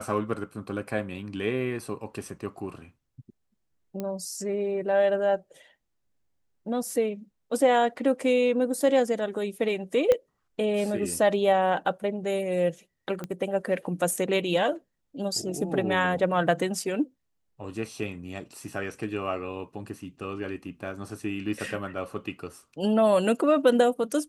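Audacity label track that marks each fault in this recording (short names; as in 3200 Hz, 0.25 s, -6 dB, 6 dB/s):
4.000000	4.000000	pop -19 dBFS
10.120000	10.120000	pop -11 dBFS
13.240000	13.240000	pop -20 dBFS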